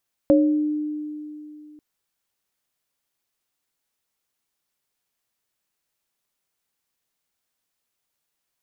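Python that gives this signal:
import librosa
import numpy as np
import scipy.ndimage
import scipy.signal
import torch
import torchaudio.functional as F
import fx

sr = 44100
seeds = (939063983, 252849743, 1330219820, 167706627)

y = fx.additive_free(sr, length_s=1.49, hz=301.0, level_db=-13, upper_db=(1.0,), decay_s=2.88, upper_decays_s=(0.48,), upper_hz=(555.0,))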